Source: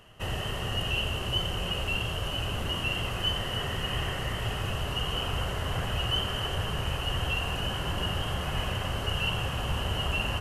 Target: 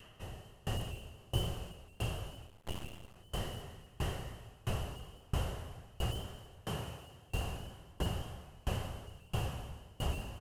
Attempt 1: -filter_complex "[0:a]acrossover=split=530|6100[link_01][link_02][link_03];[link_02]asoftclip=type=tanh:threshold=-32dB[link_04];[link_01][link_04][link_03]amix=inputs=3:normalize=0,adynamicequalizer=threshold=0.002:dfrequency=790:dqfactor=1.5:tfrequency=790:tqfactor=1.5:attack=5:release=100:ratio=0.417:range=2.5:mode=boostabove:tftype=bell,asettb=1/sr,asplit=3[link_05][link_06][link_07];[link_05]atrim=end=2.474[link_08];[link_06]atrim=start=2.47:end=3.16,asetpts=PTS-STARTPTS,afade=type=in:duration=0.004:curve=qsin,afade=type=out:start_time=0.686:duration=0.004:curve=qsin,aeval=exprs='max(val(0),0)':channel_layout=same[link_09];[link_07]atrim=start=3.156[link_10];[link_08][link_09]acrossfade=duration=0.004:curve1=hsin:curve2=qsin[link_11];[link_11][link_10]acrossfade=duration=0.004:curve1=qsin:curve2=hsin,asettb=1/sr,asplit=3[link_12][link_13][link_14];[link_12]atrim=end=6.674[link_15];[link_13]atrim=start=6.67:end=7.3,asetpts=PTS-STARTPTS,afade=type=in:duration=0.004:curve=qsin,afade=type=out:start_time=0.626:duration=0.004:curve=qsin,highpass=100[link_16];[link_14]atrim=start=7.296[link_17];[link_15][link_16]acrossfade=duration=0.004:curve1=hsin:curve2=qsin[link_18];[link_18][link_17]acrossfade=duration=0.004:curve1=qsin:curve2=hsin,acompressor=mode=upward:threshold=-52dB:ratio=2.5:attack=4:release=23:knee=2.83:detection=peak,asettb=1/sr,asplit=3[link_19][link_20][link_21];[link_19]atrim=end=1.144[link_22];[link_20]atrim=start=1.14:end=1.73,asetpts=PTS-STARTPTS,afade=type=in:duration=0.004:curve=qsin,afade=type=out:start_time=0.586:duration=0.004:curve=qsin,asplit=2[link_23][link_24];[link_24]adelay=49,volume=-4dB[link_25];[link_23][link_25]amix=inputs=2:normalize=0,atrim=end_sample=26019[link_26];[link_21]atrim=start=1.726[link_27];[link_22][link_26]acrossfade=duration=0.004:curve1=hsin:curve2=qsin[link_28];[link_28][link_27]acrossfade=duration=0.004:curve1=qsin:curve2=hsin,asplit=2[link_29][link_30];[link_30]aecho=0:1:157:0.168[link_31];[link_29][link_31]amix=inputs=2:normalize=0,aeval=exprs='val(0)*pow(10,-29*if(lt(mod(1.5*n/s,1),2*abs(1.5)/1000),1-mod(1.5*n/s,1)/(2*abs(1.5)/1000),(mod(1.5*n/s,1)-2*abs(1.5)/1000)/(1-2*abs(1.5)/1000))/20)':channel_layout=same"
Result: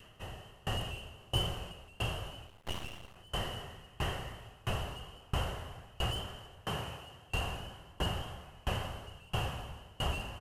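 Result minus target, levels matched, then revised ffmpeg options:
soft clipping: distortion −7 dB
-filter_complex "[0:a]acrossover=split=530|6100[link_01][link_02][link_03];[link_02]asoftclip=type=tanh:threshold=-42.5dB[link_04];[link_01][link_04][link_03]amix=inputs=3:normalize=0,adynamicequalizer=threshold=0.002:dfrequency=790:dqfactor=1.5:tfrequency=790:tqfactor=1.5:attack=5:release=100:ratio=0.417:range=2.5:mode=boostabove:tftype=bell,asettb=1/sr,asplit=3[link_05][link_06][link_07];[link_05]atrim=end=2.474[link_08];[link_06]atrim=start=2.47:end=3.16,asetpts=PTS-STARTPTS,afade=type=in:duration=0.004:curve=qsin,afade=type=out:start_time=0.686:duration=0.004:curve=qsin,aeval=exprs='max(val(0),0)':channel_layout=same[link_09];[link_07]atrim=start=3.156[link_10];[link_08][link_09]acrossfade=duration=0.004:curve1=hsin:curve2=qsin[link_11];[link_11][link_10]acrossfade=duration=0.004:curve1=qsin:curve2=hsin,asettb=1/sr,asplit=3[link_12][link_13][link_14];[link_12]atrim=end=6.674[link_15];[link_13]atrim=start=6.67:end=7.3,asetpts=PTS-STARTPTS,afade=type=in:duration=0.004:curve=qsin,afade=type=out:start_time=0.626:duration=0.004:curve=qsin,highpass=100[link_16];[link_14]atrim=start=7.296[link_17];[link_15][link_16]acrossfade=duration=0.004:curve1=hsin:curve2=qsin[link_18];[link_18][link_17]acrossfade=duration=0.004:curve1=qsin:curve2=hsin,acompressor=mode=upward:threshold=-52dB:ratio=2.5:attack=4:release=23:knee=2.83:detection=peak,asettb=1/sr,asplit=3[link_19][link_20][link_21];[link_19]atrim=end=1.144[link_22];[link_20]atrim=start=1.14:end=1.73,asetpts=PTS-STARTPTS,afade=type=in:duration=0.004:curve=qsin,afade=type=out:start_time=0.586:duration=0.004:curve=qsin,asplit=2[link_23][link_24];[link_24]adelay=49,volume=-4dB[link_25];[link_23][link_25]amix=inputs=2:normalize=0,atrim=end_sample=26019[link_26];[link_21]atrim=start=1.726[link_27];[link_22][link_26]acrossfade=duration=0.004:curve1=hsin:curve2=qsin[link_28];[link_28][link_27]acrossfade=duration=0.004:curve1=qsin:curve2=hsin,asplit=2[link_29][link_30];[link_30]aecho=0:1:157:0.168[link_31];[link_29][link_31]amix=inputs=2:normalize=0,aeval=exprs='val(0)*pow(10,-29*if(lt(mod(1.5*n/s,1),2*abs(1.5)/1000),1-mod(1.5*n/s,1)/(2*abs(1.5)/1000),(mod(1.5*n/s,1)-2*abs(1.5)/1000)/(1-2*abs(1.5)/1000))/20)':channel_layout=same"

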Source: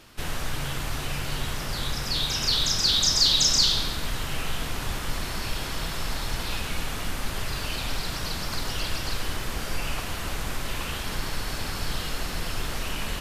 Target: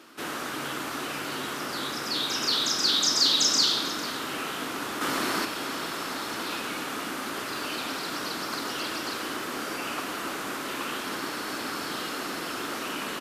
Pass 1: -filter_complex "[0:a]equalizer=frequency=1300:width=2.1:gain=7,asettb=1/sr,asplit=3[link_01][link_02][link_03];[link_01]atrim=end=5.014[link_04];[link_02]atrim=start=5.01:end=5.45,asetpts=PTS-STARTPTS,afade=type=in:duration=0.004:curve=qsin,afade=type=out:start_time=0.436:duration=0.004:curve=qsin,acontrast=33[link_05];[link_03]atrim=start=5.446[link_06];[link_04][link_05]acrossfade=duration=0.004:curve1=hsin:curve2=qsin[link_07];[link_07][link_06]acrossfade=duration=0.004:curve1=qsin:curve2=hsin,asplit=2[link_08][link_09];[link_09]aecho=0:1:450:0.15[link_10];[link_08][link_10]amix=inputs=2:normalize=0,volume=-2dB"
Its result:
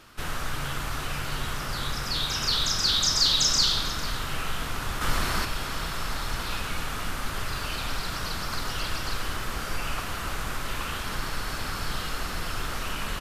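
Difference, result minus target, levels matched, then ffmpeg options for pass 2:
250 Hz band −4.5 dB
-filter_complex "[0:a]highpass=frequency=290:width_type=q:width=2.6,equalizer=frequency=1300:width=2.1:gain=7,asettb=1/sr,asplit=3[link_01][link_02][link_03];[link_01]atrim=end=5.014[link_04];[link_02]atrim=start=5.01:end=5.45,asetpts=PTS-STARTPTS,afade=type=in:duration=0.004:curve=qsin,afade=type=out:start_time=0.436:duration=0.004:curve=qsin,acontrast=33[link_05];[link_03]atrim=start=5.446[link_06];[link_04][link_05]acrossfade=duration=0.004:curve1=hsin:curve2=qsin[link_07];[link_07][link_06]acrossfade=duration=0.004:curve1=qsin:curve2=hsin,asplit=2[link_08][link_09];[link_09]aecho=0:1:450:0.15[link_10];[link_08][link_10]amix=inputs=2:normalize=0,volume=-2dB"

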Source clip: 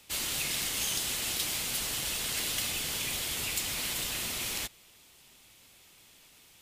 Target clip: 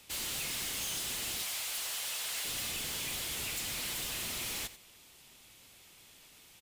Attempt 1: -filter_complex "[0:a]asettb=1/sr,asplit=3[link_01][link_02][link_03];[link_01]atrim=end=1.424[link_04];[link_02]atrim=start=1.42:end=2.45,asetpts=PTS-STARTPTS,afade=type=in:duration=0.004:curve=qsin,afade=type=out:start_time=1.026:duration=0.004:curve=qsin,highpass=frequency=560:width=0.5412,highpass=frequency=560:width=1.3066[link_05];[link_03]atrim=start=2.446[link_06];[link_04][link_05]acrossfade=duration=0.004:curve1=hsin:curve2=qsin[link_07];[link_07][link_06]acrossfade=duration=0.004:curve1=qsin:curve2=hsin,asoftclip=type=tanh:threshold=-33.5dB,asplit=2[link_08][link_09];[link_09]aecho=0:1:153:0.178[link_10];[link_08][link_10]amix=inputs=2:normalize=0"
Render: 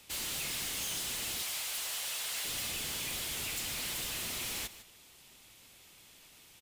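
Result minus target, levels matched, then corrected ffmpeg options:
echo 61 ms late
-filter_complex "[0:a]asettb=1/sr,asplit=3[link_01][link_02][link_03];[link_01]atrim=end=1.424[link_04];[link_02]atrim=start=1.42:end=2.45,asetpts=PTS-STARTPTS,afade=type=in:duration=0.004:curve=qsin,afade=type=out:start_time=1.026:duration=0.004:curve=qsin,highpass=frequency=560:width=0.5412,highpass=frequency=560:width=1.3066[link_05];[link_03]atrim=start=2.446[link_06];[link_04][link_05]acrossfade=duration=0.004:curve1=hsin:curve2=qsin[link_07];[link_07][link_06]acrossfade=duration=0.004:curve1=qsin:curve2=hsin,asoftclip=type=tanh:threshold=-33.5dB,asplit=2[link_08][link_09];[link_09]aecho=0:1:92:0.178[link_10];[link_08][link_10]amix=inputs=2:normalize=0"

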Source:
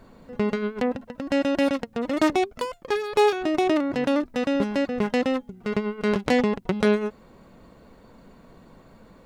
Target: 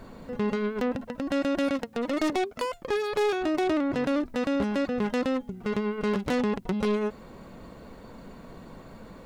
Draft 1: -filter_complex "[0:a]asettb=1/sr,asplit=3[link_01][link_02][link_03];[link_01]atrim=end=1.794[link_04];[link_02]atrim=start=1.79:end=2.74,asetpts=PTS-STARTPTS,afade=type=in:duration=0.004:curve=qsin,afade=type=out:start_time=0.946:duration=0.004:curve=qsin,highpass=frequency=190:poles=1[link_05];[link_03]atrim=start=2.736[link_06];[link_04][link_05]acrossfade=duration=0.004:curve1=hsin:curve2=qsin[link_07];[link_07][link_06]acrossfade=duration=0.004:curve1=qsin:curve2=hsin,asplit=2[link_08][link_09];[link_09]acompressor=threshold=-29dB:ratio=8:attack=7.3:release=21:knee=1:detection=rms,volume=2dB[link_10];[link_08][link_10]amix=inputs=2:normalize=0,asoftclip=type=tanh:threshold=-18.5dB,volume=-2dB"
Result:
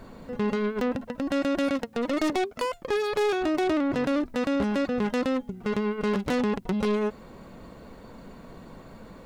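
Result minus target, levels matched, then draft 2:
downward compressor: peak gain reduction −6.5 dB
-filter_complex "[0:a]asettb=1/sr,asplit=3[link_01][link_02][link_03];[link_01]atrim=end=1.794[link_04];[link_02]atrim=start=1.79:end=2.74,asetpts=PTS-STARTPTS,afade=type=in:duration=0.004:curve=qsin,afade=type=out:start_time=0.946:duration=0.004:curve=qsin,highpass=frequency=190:poles=1[link_05];[link_03]atrim=start=2.736[link_06];[link_04][link_05]acrossfade=duration=0.004:curve1=hsin:curve2=qsin[link_07];[link_07][link_06]acrossfade=duration=0.004:curve1=qsin:curve2=hsin,asplit=2[link_08][link_09];[link_09]acompressor=threshold=-36.5dB:ratio=8:attack=7.3:release=21:knee=1:detection=rms,volume=2dB[link_10];[link_08][link_10]amix=inputs=2:normalize=0,asoftclip=type=tanh:threshold=-18.5dB,volume=-2dB"

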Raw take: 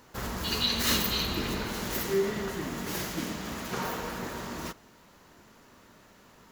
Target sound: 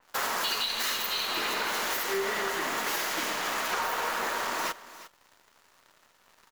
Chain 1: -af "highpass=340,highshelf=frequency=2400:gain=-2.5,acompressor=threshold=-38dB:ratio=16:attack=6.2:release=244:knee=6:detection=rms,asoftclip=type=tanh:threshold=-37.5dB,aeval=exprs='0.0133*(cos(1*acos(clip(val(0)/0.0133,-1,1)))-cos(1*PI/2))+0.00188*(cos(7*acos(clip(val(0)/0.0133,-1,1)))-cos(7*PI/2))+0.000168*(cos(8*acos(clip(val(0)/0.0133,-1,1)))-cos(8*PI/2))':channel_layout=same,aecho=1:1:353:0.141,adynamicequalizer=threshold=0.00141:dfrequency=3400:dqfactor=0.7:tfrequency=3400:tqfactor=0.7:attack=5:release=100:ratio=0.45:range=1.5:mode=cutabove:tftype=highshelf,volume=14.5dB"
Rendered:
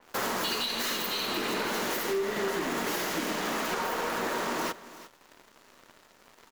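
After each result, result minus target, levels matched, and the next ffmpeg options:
soft clipping: distortion +20 dB; 250 Hz band +8.5 dB
-af "highpass=340,highshelf=frequency=2400:gain=-2.5,acompressor=threshold=-38dB:ratio=16:attack=6.2:release=244:knee=6:detection=rms,asoftclip=type=tanh:threshold=-25.5dB,aeval=exprs='0.0133*(cos(1*acos(clip(val(0)/0.0133,-1,1)))-cos(1*PI/2))+0.00188*(cos(7*acos(clip(val(0)/0.0133,-1,1)))-cos(7*PI/2))+0.000168*(cos(8*acos(clip(val(0)/0.0133,-1,1)))-cos(8*PI/2))':channel_layout=same,aecho=1:1:353:0.141,adynamicequalizer=threshold=0.00141:dfrequency=3400:dqfactor=0.7:tfrequency=3400:tqfactor=0.7:attack=5:release=100:ratio=0.45:range=1.5:mode=cutabove:tftype=highshelf,volume=14.5dB"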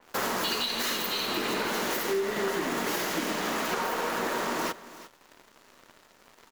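250 Hz band +8.5 dB
-af "highpass=730,highshelf=frequency=2400:gain=-2.5,acompressor=threshold=-38dB:ratio=16:attack=6.2:release=244:knee=6:detection=rms,asoftclip=type=tanh:threshold=-25.5dB,aeval=exprs='0.0133*(cos(1*acos(clip(val(0)/0.0133,-1,1)))-cos(1*PI/2))+0.00188*(cos(7*acos(clip(val(0)/0.0133,-1,1)))-cos(7*PI/2))+0.000168*(cos(8*acos(clip(val(0)/0.0133,-1,1)))-cos(8*PI/2))':channel_layout=same,aecho=1:1:353:0.141,adynamicequalizer=threshold=0.00141:dfrequency=3400:dqfactor=0.7:tfrequency=3400:tqfactor=0.7:attack=5:release=100:ratio=0.45:range=1.5:mode=cutabove:tftype=highshelf,volume=14.5dB"

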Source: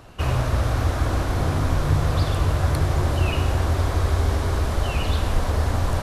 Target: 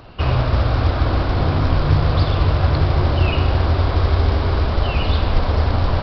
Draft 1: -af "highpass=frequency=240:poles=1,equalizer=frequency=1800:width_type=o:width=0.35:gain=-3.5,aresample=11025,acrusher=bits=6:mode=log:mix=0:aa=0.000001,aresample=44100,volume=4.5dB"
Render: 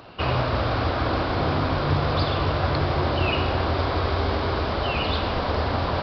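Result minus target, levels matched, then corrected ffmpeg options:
250 Hz band +2.5 dB
-af "equalizer=frequency=1800:width_type=o:width=0.35:gain=-3.5,aresample=11025,acrusher=bits=6:mode=log:mix=0:aa=0.000001,aresample=44100,volume=4.5dB"

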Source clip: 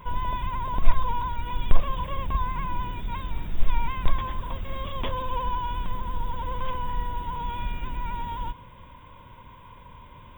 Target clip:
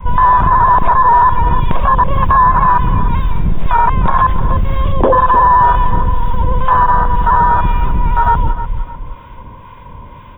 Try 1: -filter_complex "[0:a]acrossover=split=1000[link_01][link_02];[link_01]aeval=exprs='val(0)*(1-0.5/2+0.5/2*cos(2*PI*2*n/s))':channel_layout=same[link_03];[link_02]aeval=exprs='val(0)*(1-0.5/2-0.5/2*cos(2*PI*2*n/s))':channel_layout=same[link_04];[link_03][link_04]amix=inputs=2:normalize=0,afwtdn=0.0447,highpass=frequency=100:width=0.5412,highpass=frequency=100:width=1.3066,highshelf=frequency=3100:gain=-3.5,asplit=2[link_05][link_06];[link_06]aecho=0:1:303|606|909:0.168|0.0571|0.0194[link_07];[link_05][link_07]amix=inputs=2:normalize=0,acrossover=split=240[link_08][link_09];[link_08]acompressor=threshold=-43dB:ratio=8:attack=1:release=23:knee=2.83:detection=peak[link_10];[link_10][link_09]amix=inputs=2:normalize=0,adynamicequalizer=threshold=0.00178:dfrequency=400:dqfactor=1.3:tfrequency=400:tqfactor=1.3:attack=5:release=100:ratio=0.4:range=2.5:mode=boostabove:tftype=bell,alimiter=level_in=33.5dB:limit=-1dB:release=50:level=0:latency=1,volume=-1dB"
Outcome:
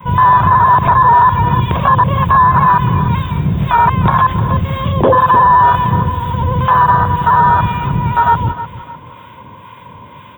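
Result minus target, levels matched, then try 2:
8,000 Hz band +8.5 dB; 125 Hz band +2.5 dB
-filter_complex "[0:a]acrossover=split=1000[link_01][link_02];[link_01]aeval=exprs='val(0)*(1-0.5/2+0.5/2*cos(2*PI*2*n/s))':channel_layout=same[link_03];[link_02]aeval=exprs='val(0)*(1-0.5/2-0.5/2*cos(2*PI*2*n/s))':channel_layout=same[link_04];[link_03][link_04]amix=inputs=2:normalize=0,afwtdn=0.0447,highshelf=frequency=3100:gain=-14.5,asplit=2[link_05][link_06];[link_06]aecho=0:1:303|606|909:0.168|0.0571|0.0194[link_07];[link_05][link_07]amix=inputs=2:normalize=0,acrossover=split=240[link_08][link_09];[link_08]acompressor=threshold=-43dB:ratio=8:attack=1:release=23:knee=2.83:detection=peak[link_10];[link_10][link_09]amix=inputs=2:normalize=0,adynamicequalizer=threshold=0.00178:dfrequency=400:dqfactor=1.3:tfrequency=400:tqfactor=1.3:attack=5:release=100:ratio=0.4:range=2.5:mode=boostabove:tftype=bell,alimiter=level_in=33.5dB:limit=-1dB:release=50:level=0:latency=1,volume=-1dB"

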